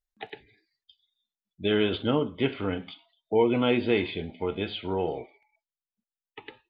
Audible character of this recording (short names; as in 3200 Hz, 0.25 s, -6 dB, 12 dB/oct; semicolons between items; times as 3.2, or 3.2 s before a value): noise floor -95 dBFS; spectral tilt -4.5 dB/oct